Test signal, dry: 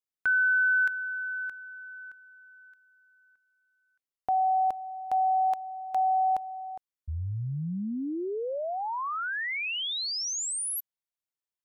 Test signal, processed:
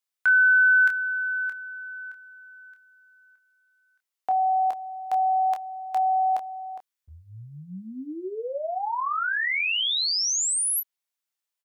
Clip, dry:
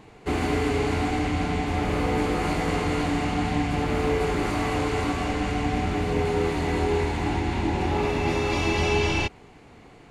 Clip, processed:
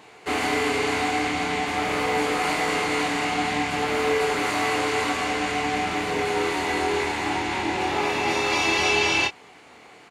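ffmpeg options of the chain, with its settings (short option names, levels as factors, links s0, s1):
-filter_complex "[0:a]highpass=f=910:p=1,asplit=2[s0][s1];[s1]aecho=0:1:16|27:0.266|0.447[s2];[s0][s2]amix=inputs=2:normalize=0,volume=2"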